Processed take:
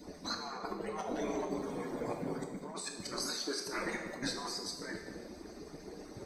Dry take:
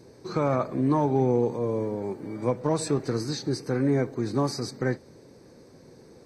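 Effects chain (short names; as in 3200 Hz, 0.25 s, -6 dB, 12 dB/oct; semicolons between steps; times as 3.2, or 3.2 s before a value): median-filter separation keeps percussive; 3.26–3.67 HPF 870 Hz 12 dB/oct; negative-ratio compressor -43 dBFS, ratio -1; plate-style reverb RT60 1.2 s, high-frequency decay 0.95×, DRR 2 dB; gain +1 dB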